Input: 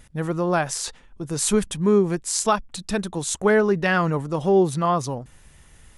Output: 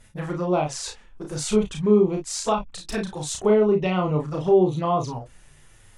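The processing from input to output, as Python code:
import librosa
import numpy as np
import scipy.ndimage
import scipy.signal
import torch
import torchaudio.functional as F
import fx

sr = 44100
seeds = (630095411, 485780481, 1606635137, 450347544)

y = fx.env_lowpass_down(x, sr, base_hz=2700.0, full_db=-15.5)
y = fx.peak_eq(y, sr, hz=210.0, db=-3.0, octaves=0.97)
y = fx.env_flanger(y, sr, rest_ms=10.6, full_db=-19.5)
y = fx.room_early_taps(y, sr, ms=(33, 53), db=(-3.5, -10.0))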